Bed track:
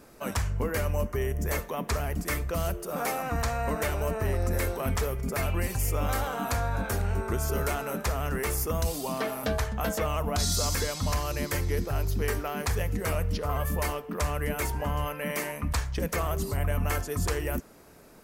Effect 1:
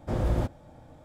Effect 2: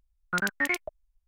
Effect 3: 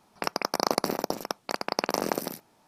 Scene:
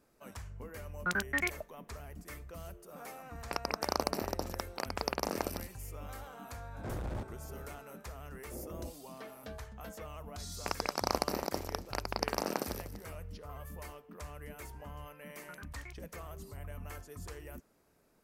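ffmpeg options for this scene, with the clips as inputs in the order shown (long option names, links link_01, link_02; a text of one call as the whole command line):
ffmpeg -i bed.wav -i cue0.wav -i cue1.wav -i cue2.wav -filter_complex "[2:a]asplit=2[link_01][link_02];[3:a]asplit=2[link_03][link_04];[1:a]asplit=2[link_05][link_06];[0:a]volume=-17dB[link_07];[link_05]asoftclip=type=tanh:threshold=-32.5dB[link_08];[link_06]asuperpass=centerf=390:order=4:qfactor=0.93[link_09];[link_04]aecho=1:1:242:0.237[link_10];[link_02]acompressor=threshold=-30dB:ratio=6:attack=3.2:release=140:knee=1:detection=peak[link_11];[link_01]atrim=end=1.27,asetpts=PTS-STARTPTS,volume=-5dB,afade=type=in:duration=0.004:curve=hsin,afade=type=out:start_time=1.266:duration=0.004:curve=hsin,adelay=730[link_12];[link_03]atrim=end=2.67,asetpts=PTS-STARTPTS,volume=-7dB,afade=type=in:duration=0.004:curve=hsin,afade=type=out:start_time=2.666:duration=0.004:curve=hsin,adelay=145089S[link_13];[link_08]atrim=end=1.04,asetpts=PTS-STARTPTS,volume=-3.5dB,afade=type=in:duration=0.004:curve=hsin,afade=type=out:start_time=1.036:duration=0.004:curve=hsin,adelay=6760[link_14];[link_09]atrim=end=1.04,asetpts=PTS-STARTPTS,volume=-12.5dB,afade=type=in:duration=0.004:curve=hsin,afade=type=out:start_time=1.036:duration=0.004:curve=hsin,adelay=8430[link_15];[link_10]atrim=end=2.67,asetpts=PTS-STARTPTS,volume=-6.5dB,afade=type=in:duration=0.004:curve=hsin,afade=type=out:start_time=2.666:duration=0.004:curve=hsin,adelay=10440[link_16];[link_11]atrim=end=1.27,asetpts=PTS-STARTPTS,volume=-16.5dB,afade=type=in:duration=0.004:curve=hsin,afade=type=out:start_time=1.266:duration=0.004:curve=hsin,adelay=15160[link_17];[link_07][link_12][link_13][link_14][link_15][link_16][link_17]amix=inputs=7:normalize=0" out.wav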